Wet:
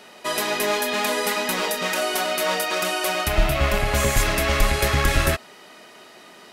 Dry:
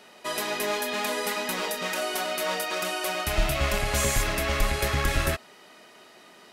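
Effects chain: 3.28–4.17 bell 7400 Hz -6 dB 2.1 oct; gain +5.5 dB

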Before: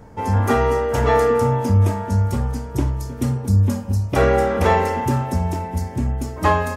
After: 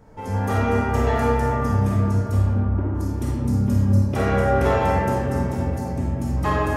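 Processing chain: 2.53–2.95 Chebyshev band-pass 240–1400 Hz, order 2; digital reverb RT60 3.7 s, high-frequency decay 0.25×, pre-delay 5 ms, DRR -5 dB; gain -8 dB

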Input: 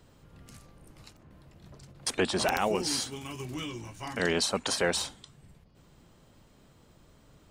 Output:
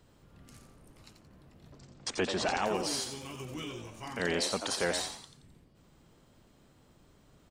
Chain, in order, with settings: 1.72–2.66 steep low-pass 8000 Hz 48 dB/oct; frequency-shifting echo 87 ms, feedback 38%, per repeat +110 Hz, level -7.5 dB; gain -4 dB

